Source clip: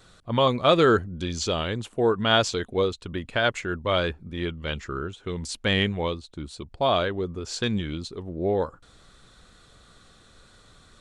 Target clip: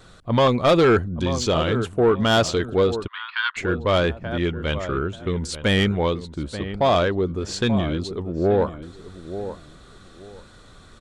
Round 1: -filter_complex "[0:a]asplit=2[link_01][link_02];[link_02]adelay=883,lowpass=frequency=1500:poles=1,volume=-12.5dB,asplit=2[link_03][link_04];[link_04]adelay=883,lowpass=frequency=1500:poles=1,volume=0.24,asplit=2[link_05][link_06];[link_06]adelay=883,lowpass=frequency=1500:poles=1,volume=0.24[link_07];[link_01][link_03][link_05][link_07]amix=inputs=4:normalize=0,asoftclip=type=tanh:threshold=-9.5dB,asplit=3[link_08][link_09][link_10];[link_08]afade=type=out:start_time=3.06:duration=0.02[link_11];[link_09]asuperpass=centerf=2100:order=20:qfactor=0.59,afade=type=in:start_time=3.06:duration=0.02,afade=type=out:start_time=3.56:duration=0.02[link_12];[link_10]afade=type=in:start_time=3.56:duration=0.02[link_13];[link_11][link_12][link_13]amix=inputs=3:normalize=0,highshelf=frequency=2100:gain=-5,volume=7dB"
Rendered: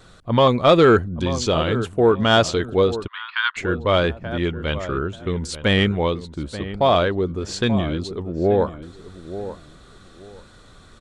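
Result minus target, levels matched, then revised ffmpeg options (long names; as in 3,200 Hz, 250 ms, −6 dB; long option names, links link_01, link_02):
soft clipping: distortion −10 dB
-filter_complex "[0:a]asplit=2[link_01][link_02];[link_02]adelay=883,lowpass=frequency=1500:poles=1,volume=-12.5dB,asplit=2[link_03][link_04];[link_04]adelay=883,lowpass=frequency=1500:poles=1,volume=0.24,asplit=2[link_05][link_06];[link_06]adelay=883,lowpass=frequency=1500:poles=1,volume=0.24[link_07];[link_01][link_03][link_05][link_07]amix=inputs=4:normalize=0,asoftclip=type=tanh:threshold=-17dB,asplit=3[link_08][link_09][link_10];[link_08]afade=type=out:start_time=3.06:duration=0.02[link_11];[link_09]asuperpass=centerf=2100:order=20:qfactor=0.59,afade=type=in:start_time=3.06:duration=0.02,afade=type=out:start_time=3.56:duration=0.02[link_12];[link_10]afade=type=in:start_time=3.56:duration=0.02[link_13];[link_11][link_12][link_13]amix=inputs=3:normalize=0,highshelf=frequency=2100:gain=-5,volume=7dB"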